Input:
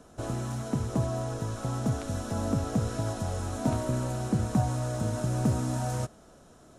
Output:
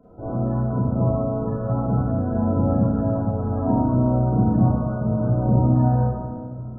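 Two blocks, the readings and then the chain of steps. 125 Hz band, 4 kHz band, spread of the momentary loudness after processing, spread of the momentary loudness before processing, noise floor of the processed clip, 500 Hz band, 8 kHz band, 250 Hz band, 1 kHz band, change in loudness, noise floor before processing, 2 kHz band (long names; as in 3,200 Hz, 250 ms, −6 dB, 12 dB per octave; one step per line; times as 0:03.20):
+9.0 dB, below −40 dB, 6 LU, 6 LU, −33 dBFS, +8.5 dB, below −40 dB, +10.5 dB, +7.5 dB, +9.0 dB, −55 dBFS, can't be measured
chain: spectral peaks only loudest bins 32
echo with a time of its own for lows and highs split 380 Hz, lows 651 ms, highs 149 ms, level −14.5 dB
four-comb reverb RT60 1.2 s, combs from 32 ms, DRR −10 dB
level −2 dB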